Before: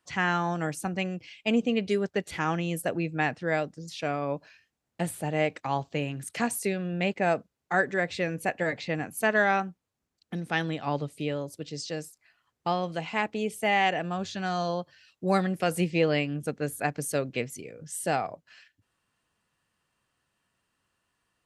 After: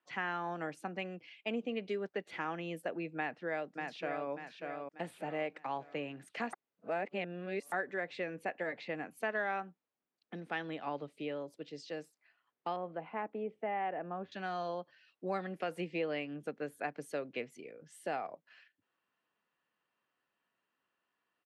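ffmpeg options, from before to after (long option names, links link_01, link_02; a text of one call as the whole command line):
ffmpeg -i in.wav -filter_complex "[0:a]asplit=2[link_01][link_02];[link_02]afade=type=in:start_time=3.16:duration=0.01,afade=type=out:start_time=4.29:duration=0.01,aecho=0:1:590|1180|1770|2360|2950:0.473151|0.189261|0.0757042|0.0302817|0.0121127[link_03];[link_01][link_03]amix=inputs=2:normalize=0,asettb=1/sr,asplit=3[link_04][link_05][link_06];[link_04]atrim=end=12.764[link_07];[link_05]atrim=start=12.76:end=14.32,asetpts=PTS-STARTPTS,afade=type=in:duration=0.004:curve=qsin,afade=type=out:start_time=1.556:duration=0.004:curve=qsin,lowpass=1300[link_08];[link_06]atrim=start=14.316[link_09];[link_07][link_08]acrossfade=duration=0.004:curve1=hsin:curve2=qsin[link_10];[link_10][link_09]acrossfade=duration=0.004:curve1=qsin:curve2=hsin,asplit=3[link_11][link_12][link_13];[link_11]atrim=end=6.532[link_14];[link_12]atrim=start=6.528:end=7.722,asetpts=PTS-STARTPTS,areverse[link_15];[link_13]atrim=start=7.718[link_16];[link_14][link_15]acrossfade=duration=0.004:curve1=hsin:curve2=hsin[link_17];[link_17][link_16]acrossfade=duration=0.004:curve1=hsin:curve2=hsin,highpass=130,acrossover=split=220 3700:gain=0.224 1 0.141[link_18][link_19][link_20];[link_18][link_19][link_20]amix=inputs=3:normalize=0,acompressor=threshold=-30dB:ratio=2,volume=-5.5dB" out.wav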